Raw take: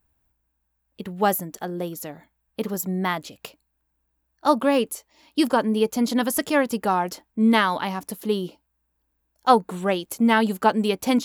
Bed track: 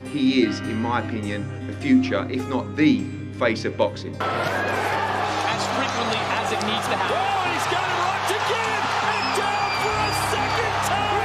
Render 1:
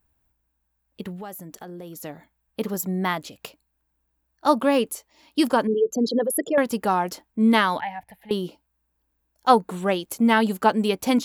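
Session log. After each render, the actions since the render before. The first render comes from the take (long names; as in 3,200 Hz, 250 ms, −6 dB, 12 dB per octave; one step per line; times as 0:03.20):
0:01.16–0:02.04: downward compressor 4 to 1, threshold −36 dBFS
0:05.67–0:06.58: spectral envelope exaggerated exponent 3
0:07.80–0:08.31: drawn EQ curve 110 Hz 0 dB, 350 Hz −30 dB, 820 Hz +4 dB, 1,200 Hz −24 dB, 1,800 Hz +3 dB, 3,900 Hz −16 dB, 6,200 Hz −29 dB, 15,000 Hz −17 dB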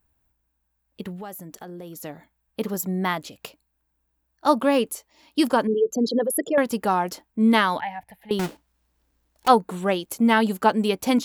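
0:08.39–0:09.48: each half-wave held at its own peak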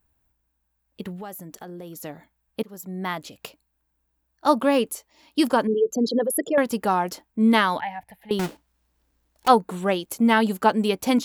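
0:02.63–0:03.39: fade in, from −21 dB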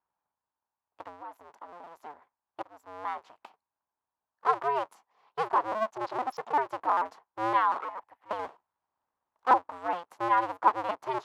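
sub-harmonics by changed cycles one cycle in 2, inverted
resonant band-pass 960 Hz, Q 3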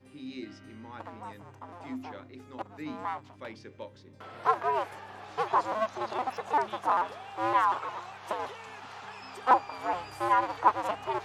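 mix in bed track −22 dB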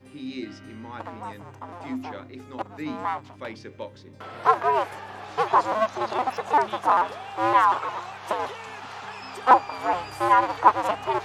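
level +6.5 dB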